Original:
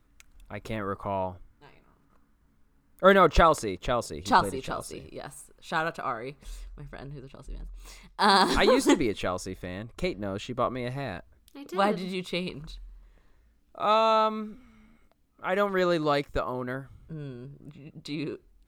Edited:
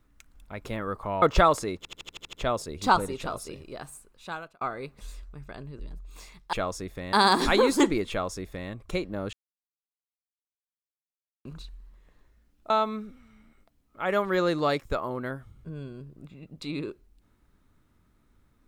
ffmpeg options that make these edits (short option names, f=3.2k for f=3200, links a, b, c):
-filter_complex "[0:a]asplit=16[a][b][c][d][e][f][g][h][i][j][k][l][m][n][o][p];[a]atrim=end=1.222[q];[b]atrim=start=3.218:end=3.852[r];[c]atrim=start=3.768:end=3.852[s];[d]atrim=start=3.768:end=3.852[t];[e]atrim=start=3.768:end=3.852[u];[f]atrim=start=3.768:end=3.852[v];[g]atrim=start=3.768:end=3.852[w];[h]atrim=start=3.768:end=3.852[x];[i]atrim=start=3.768:end=6.05,asetpts=PTS-STARTPTS,afade=t=out:st=1.592:d=0.69[y];[j]atrim=start=6.05:end=7.232,asetpts=PTS-STARTPTS,afade=t=in:d=0.004:c=hsin[z];[k]atrim=start=7.478:end=8.222[aa];[l]atrim=start=9.188:end=9.792[ab];[m]atrim=start=8.218:end=10.42,asetpts=PTS-STARTPTS,afade=t=out:st=2.198:d=0.004:c=hsin[ac];[n]atrim=start=10.42:end=12.54,asetpts=PTS-STARTPTS,volume=0[ad];[o]atrim=start=12.54:end=13.792,asetpts=PTS-STARTPTS,afade=t=in:d=0.004:c=hsin[ae];[p]atrim=start=14.138[af];[q][r]acrossfade=d=0.004:c1=hsin:c2=hsin[ag];[ag][s]acrossfade=d=0.004:c1=hsin:c2=hsin[ah];[ah][t]acrossfade=d=0.004:c1=hsin:c2=hsin[ai];[ai][u]acrossfade=d=0.004:c1=hsin:c2=hsin[aj];[aj][v]acrossfade=d=0.004:c1=hsin:c2=hsin[ak];[ak][w]acrossfade=d=0.004:c1=hsin:c2=hsin[al];[al][x]acrossfade=d=0.004:c1=hsin:c2=hsin[am];[y][z]concat=n=2:v=0:a=1[an];[am][an]acrossfade=d=0.004:c1=hsin:c2=hsin[ao];[ao][aa]acrossfade=d=0.004:c1=hsin:c2=hsin[ap];[ap][ab]acrossfade=d=0.004:c1=hsin:c2=hsin[aq];[ac][ad][ae]concat=n=3:v=0:a=1[ar];[aq][ar]acrossfade=d=0.004:c1=hsin:c2=hsin[as];[as][af]acrossfade=d=0.004:c1=hsin:c2=hsin"